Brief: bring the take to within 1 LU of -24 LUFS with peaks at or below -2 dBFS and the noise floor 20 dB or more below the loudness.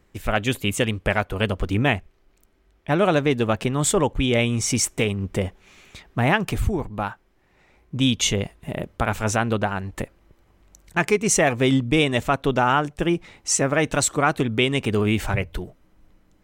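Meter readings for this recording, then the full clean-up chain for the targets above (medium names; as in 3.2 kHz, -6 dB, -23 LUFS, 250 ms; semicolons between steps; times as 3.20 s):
loudness -22.5 LUFS; peak level -4.5 dBFS; loudness target -24.0 LUFS
-> trim -1.5 dB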